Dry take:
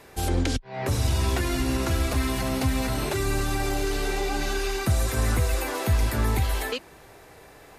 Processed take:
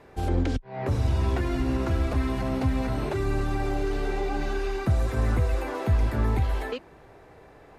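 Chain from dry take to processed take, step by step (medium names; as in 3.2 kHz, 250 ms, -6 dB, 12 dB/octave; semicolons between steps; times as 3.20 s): low-pass 1.2 kHz 6 dB/octave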